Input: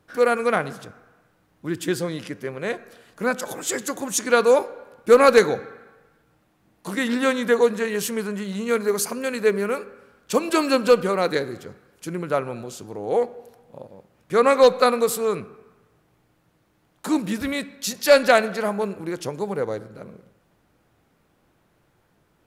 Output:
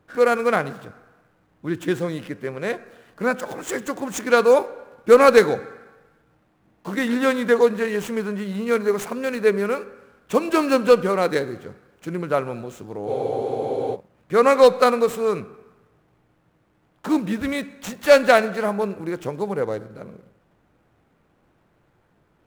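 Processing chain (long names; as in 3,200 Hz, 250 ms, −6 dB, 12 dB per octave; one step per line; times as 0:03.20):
running median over 9 samples
frozen spectrum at 0:13.09, 0.86 s
level +1.5 dB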